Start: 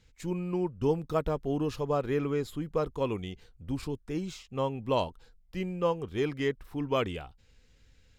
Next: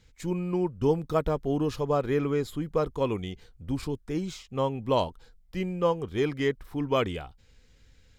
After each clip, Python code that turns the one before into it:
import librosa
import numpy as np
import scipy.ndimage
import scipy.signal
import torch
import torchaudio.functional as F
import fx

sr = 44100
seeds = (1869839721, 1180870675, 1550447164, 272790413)

y = fx.notch(x, sr, hz=2700.0, q=17.0)
y = F.gain(torch.from_numpy(y), 3.0).numpy()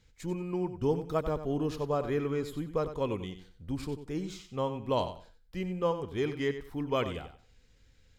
y = fx.echo_feedback(x, sr, ms=93, feedback_pct=23, wet_db=-11)
y = F.gain(torch.from_numpy(y), -4.5).numpy()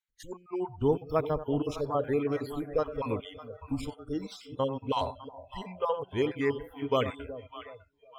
y = fx.spec_dropout(x, sr, seeds[0], share_pct=36)
y = fx.echo_split(y, sr, split_hz=720.0, low_ms=369, high_ms=603, feedback_pct=52, wet_db=-12.5)
y = fx.noise_reduce_blind(y, sr, reduce_db=25)
y = F.gain(torch.from_numpy(y), 3.0).numpy()